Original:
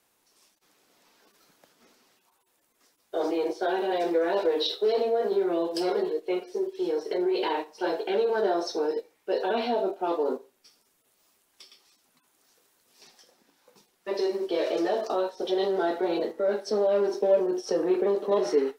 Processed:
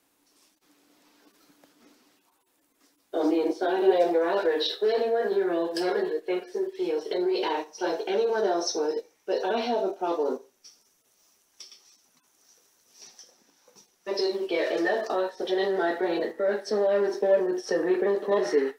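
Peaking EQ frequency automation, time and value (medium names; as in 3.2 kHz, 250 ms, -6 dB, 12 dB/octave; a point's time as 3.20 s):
peaking EQ +13 dB 0.27 oct
3.77 s 290 Hz
4.46 s 1.7 kHz
6.67 s 1.7 kHz
7.45 s 5.9 kHz
14.13 s 5.9 kHz
14.66 s 1.8 kHz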